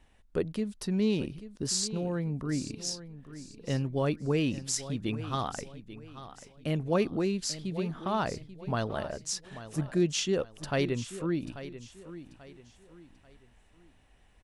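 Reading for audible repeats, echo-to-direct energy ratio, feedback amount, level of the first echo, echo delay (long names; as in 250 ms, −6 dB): 3, −13.5 dB, 35%, −14.0 dB, 838 ms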